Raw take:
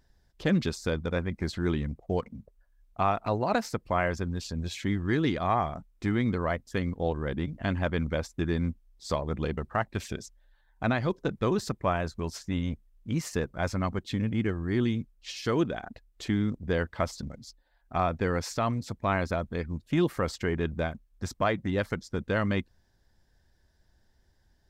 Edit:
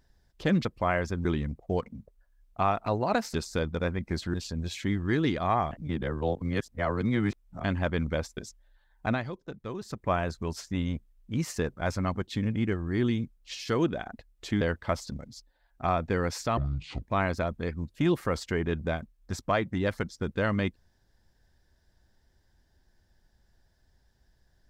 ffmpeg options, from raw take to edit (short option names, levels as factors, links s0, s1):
-filter_complex "[0:a]asplit=13[s0][s1][s2][s3][s4][s5][s6][s7][s8][s9][s10][s11][s12];[s0]atrim=end=0.652[s13];[s1]atrim=start=3.738:end=4.342[s14];[s2]atrim=start=1.648:end=3.742[s15];[s3]atrim=start=0.648:end=1.652[s16];[s4]atrim=start=4.338:end=5.712[s17];[s5]atrim=start=5.708:end=7.642,asetpts=PTS-STARTPTS,areverse[s18];[s6]atrim=start=7.638:end=8.372[s19];[s7]atrim=start=10.138:end=11.09,asetpts=PTS-STARTPTS,afade=t=out:st=0.702:d=0.25:silence=0.298538[s20];[s8]atrim=start=11.09:end=11.62,asetpts=PTS-STARTPTS,volume=0.299[s21];[s9]atrim=start=11.62:end=16.382,asetpts=PTS-STARTPTS,afade=t=in:d=0.25:silence=0.298538[s22];[s10]atrim=start=16.718:end=18.684[s23];[s11]atrim=start=18.68:end=18.94,asetpts=PTS-STARTPTS,asetrate=25578,aresample=44100[s24];[s12]atrim=start=18.936[s25];[s13][s14]acrossfade=d=0.004:c1=hsin:c2=hsin[s26];[s26][s15]acrossfade=d=0.004:c1=hsin:c2=hsin[s27];[s27][s16]acrossfade=d=0.004:c1=hsin:c2=hsin[s28];[s28][s17]acrossfade=d=0.004:c1=hsin:c2=hsin[s29];[s29][s18]acrossfade=d=0.004:c1=hsin:c2=hsin[s30];[s30][s19]acrossfade=d=0.004:c1=hsin:c2=hsin[s31];[s20][s21][s22]concat=n=3:v=0:a=1[s32];[s31][s32]acrossfade=d=0.004:c1=hsin:c2=hsin[s33];[s33][s23]acrossfade=d=0.004:c1=hsin:c2=hsin[s34];[s34][s24]acrossfade=d=0.004:c1=hsin:c2=hsin[s35];[s35][s25]acrossfade=d=0.004:c1=hsin:c2=hsin"